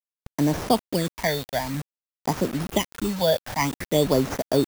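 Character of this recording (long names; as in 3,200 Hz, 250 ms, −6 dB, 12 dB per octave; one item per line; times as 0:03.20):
aliases and images of a low sample rate 4,000 Hz, jitter 0%
phaser sweep stages 8, 0.52 Hz, lowest notch 320–3,300 Hz
a quantiser's noise floor 6 bits, dither none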